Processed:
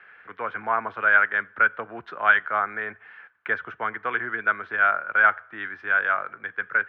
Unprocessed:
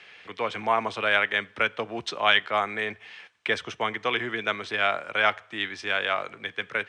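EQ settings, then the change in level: synth low-pass 1500 Hz, resonance Q 5.9; -5.5 dB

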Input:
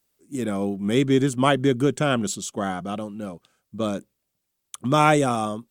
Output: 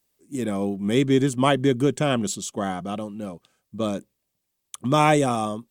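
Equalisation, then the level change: notch 1400 Hz, Q 8.4; 0.0 dB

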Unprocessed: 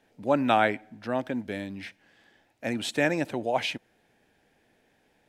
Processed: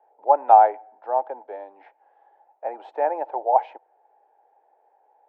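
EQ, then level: steep high-pass 410 Hz 36 dB/oct; synth low-pass 840 Hz, resonance Q 8.2; -1.5 dB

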